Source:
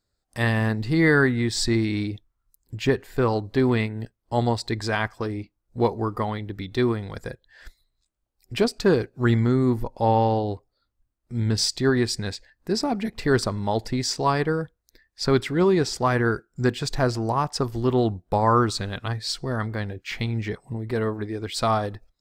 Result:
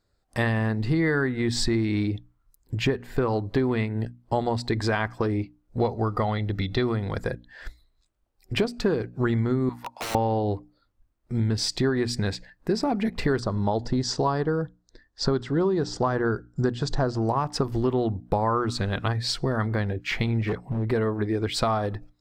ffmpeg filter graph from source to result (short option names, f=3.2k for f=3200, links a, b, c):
-filter_complex "[0:a]asettb=1/sr,asplit=3[a][b][c];[a]atrim=end=5.794[d];[b]atrim=start=5.79:end=6.96,asetpts=PTS-STARTPTS,afade=t=in:d=0.004:c=qsin,afade=t=out:st=1.166:d=0.004:c=qsin,equalizer=f=4.8k:t=o:w=1.1:g=6,acrossover=split=4900[e][f];[f]acompressor=threshold=-52dB:ratio=4:attack=1:release=60[g];[e][g]amix=inputs=2:normalize=0,aecho=1:1:1.5:0.33,atrim=end_sample=51597[h];[c]atrim=start=6.956[i];[d][h]acrossfade=d=0.004:c1=hsin:c2=qsin[j];[j][i]acrossfade=d=0.004:c1=qsin:c2=hsin,asettb=1/sr,asplit=3[k][l][m];[k]atrim=end=9.694[n];[l]atrim=start=9.69:end=10.15,asetpts=PTS-STARTPTS,afade=t=in:d=0.004:c=qsin,afade=t=out:st=0.456:d=0.004:c=qsin,highpass=f=850:w=0.5412,highpass=f=850:w=1.3066,aeval=exprs='(mod(29.9*val(0)+1,2)-1)/29.9':c=same[o];[m]atrim=start=10.146[p];[n][o]acrossfade=d=0.004:c1=hsin:c2=qsin[q];[q][p]acrossfade=d=0.004:c1=qsin:c2=hsin,asettb=1/sr,asplit=3[r][s][t];[r]atrim=end=13.404[u];[s]atrim=start=13.4:end=17.22,asetpts=PTS-STARTPTS,afade=t=in:d=0.004:c=qsin,afade=t=out:st=3.816:d=0.004:c=qsin,lowpass=f=7.6k:w=0.5412,lowpass=f=7.6k:w=1.3066,equalizer=f=2.3k:w=2.7:g=-13[v];[t]atrim=start=17.216[w];[u][v]acrossfade=d=0.004:c1=hsin:c2=qsin[x];[x][w]acrossfade=d=0.004:c1=qsin:c2=hsin,asettb=1/sr,asplit=3[y][z][aa];[y]atrim=end=20.414[ab];[z]atrim=start=20.41:end=20.88,asetpts=PTS-STARTPTS,afade=t=in:d=0.004:c=qsin,afade=t=out:st=0.466:d=0.004:c=qsin,equalizer=f=8k:t=o:w=0.93:g=-10.5,asoftclip=type=hard:threshold=-27.5dB[ac];[aa]atrim=start=20.876[ad];[ab][ac]acrossfade=d=0.004:c1=hsin:c2=qsin[ae];[ae][ad]acrossfade=d=0.004:c1=qsin:c2=hsin,highshelf=f=3.7k:g=-9.5,bandreject=f=60:t=h:w=6,bandreject=f=120:t=h:w=6,bandreject=f=180:t=h:w=6,bandreject=f=240:t=h:w=6,bandreject=f=300:t=h:w=6,acompressor=threshold=-28dB:ratio=6,volume=7dB"